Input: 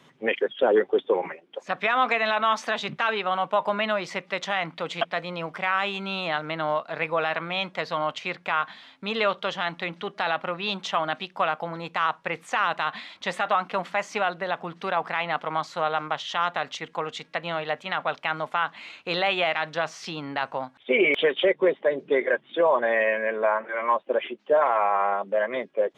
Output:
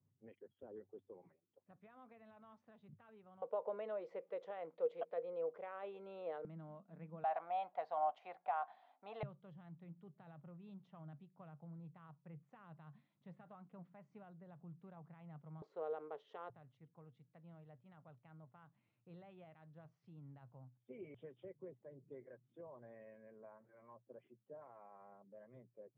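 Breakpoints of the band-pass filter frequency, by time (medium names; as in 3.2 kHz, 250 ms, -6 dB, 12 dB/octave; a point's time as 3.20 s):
band-pass filter, Q 11
100 Hz
from 3.42 s 480 Hz
from 6.45 s 190 Hz
from 7.24 s 740 Hz
from 9.23 s 140 Hz
from 15.62 s 430 Hz
from 16.50 s 120 Hz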